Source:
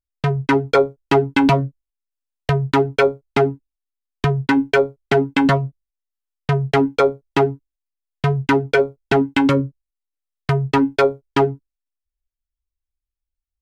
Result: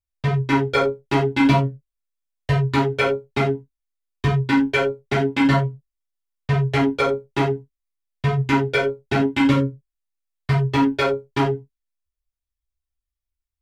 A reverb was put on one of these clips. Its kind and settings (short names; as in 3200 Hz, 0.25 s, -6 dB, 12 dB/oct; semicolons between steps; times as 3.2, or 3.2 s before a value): non-linear reverb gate 0.12 s falling, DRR -7.5 dB; gain -9.5 dB